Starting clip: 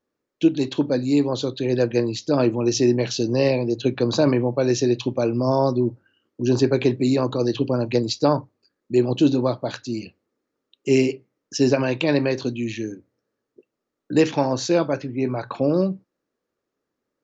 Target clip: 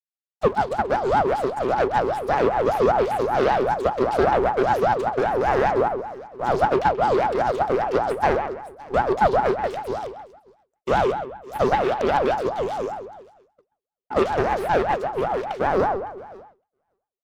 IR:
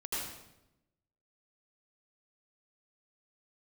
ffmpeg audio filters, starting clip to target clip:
-filter_complex "[0:a]aeval=exprs='abs(val(0))':channel_layout=same,asplit=2[link_01][link_02];[link_02]aecho=0:1:560|1120:0.0668|0.0201[link_03];[link_01][link_03]amix=inputs=2:normalize=0,acrossover=split=3600[link_04][link_05];[link_05]acompressor=threshold=-44dB:ratio=4:attack=1:release=60[link_06];[link_04][link_06]amix=inputs=2:normalize=0,asplit=2[link_07][link_08];[link_08]adelay=132,lowpass=frequency=2200:poles=1,volume=-8.5dB,asplit=2[link_09][link_10];[link_10]adelay=132,lowpass=frequency=2200:poles=1,volume=0.38,asplit=2[link_11][link_12];[link_12]adelay=132,lowpass=frequency=2200:poles=1,volume=0.38,asplit=2[link_13][link_14];[link_14]adelay=132,lowpass=frequency=2200:poles=1,volume=0.38[link_15];[link_09][link_11][link_13][link_15]amix=inputs=4:normalize=0[link_16];[link_07][link_16]amix=inputs=2:normalize=0,agate=range=-33dB:threshold=-36dB:ratio=3:detection=peak,aeval=exprs='val(0)*sin(2*PI*620*n/s+620*0.4/5.1*sin(2*PI*5.1*n/s))':channel_layout=same"

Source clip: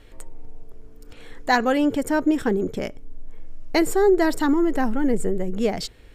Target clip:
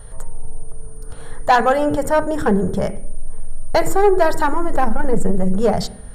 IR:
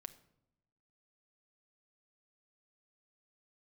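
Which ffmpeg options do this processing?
-filter_complex "[0:a]asplit=2[link_01][link_02];[link_02]acrossover=split=310 2200:gain=0.0891 1 0.0708[link_03][link_04][link_05];[link_03][link_04][link_05]amix=inputs=3:normalize=0[link_06];[1:a]atrim=start_sample=2205,asetrate=52920,aresample=44100[link_07];[link_06][link_07]afir=irnorm=-1:irlink=0,volume=13.5dB[link_08];[link_01][link_08]amix=inputs=2:normalize=0,aeval=exprs='val(0)+0.00398*sin(2*PI*9300*n/s)':channel_layout=same,lowshelf=frequency=240:width_type=q:width=1.5:gain=9,acontrast=57,volume=-4dB"

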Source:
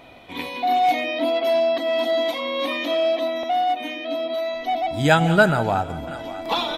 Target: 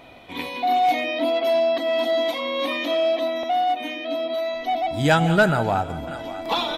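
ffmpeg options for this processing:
ffmpeg -i in.wav -af "asoftclip=type=tanh:threshold=-7.5dB" out.wav

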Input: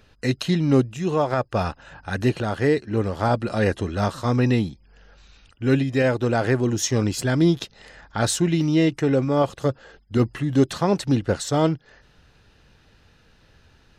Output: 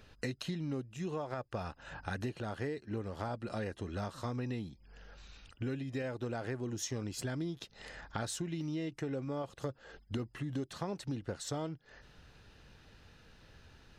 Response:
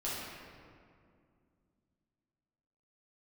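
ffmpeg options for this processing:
-af "acompressor=threshold=-32dB:ratio=10,volume=-3dB"

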